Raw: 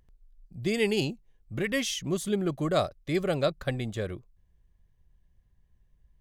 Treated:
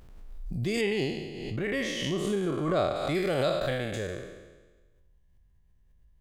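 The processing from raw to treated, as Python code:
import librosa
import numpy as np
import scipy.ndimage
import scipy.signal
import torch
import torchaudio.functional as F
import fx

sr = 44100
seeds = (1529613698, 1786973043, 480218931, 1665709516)

y = fx.spec_trails(x, sr, decay_s=1.26)
y = fx.lowpass(y, sr, hz=2700.0, slope=6, at=(0.81, 2.96))
y = fx.pre_swell(y, sr, db_per_s=36.0)
y = F.gain(torch.from_numpy(y), -4.0).numpy()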